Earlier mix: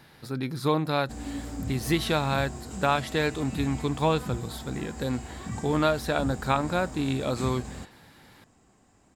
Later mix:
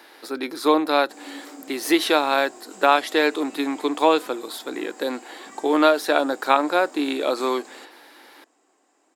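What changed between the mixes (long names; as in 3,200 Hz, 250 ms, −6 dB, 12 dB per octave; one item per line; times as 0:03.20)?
speech +8.0 dB
master: add Chebyshev high-pass filter 300 Hz, order 4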